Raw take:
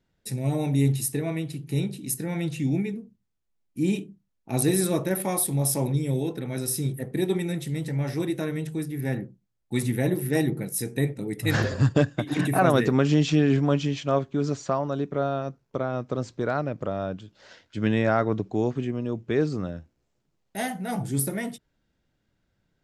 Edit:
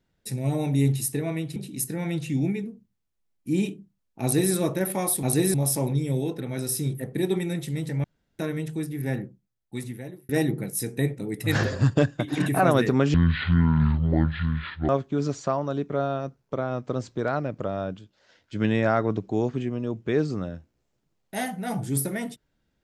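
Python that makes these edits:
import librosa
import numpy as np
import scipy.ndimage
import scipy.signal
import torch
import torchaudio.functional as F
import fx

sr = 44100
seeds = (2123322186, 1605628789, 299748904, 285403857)

y = fx.edit(x, sr, fx.cut(start_s=1.56, length_s=0.3),
    fx.duplicate(start_s=4.52, length_s=0.31, to_s=5.53),
    fx.room_tone_fill(start_s=8.03, length_s=0.35),
    fx.fade_out_span(start_s=9.1, length_s=1.18),
    fx.speed_span(start_s=13.13, length_s=0.98, speed=0.56),
    fx.fade_down_up(start_s=17.14, length_s=0.64, db=-11.5, fade_s=0.28), tone=tone)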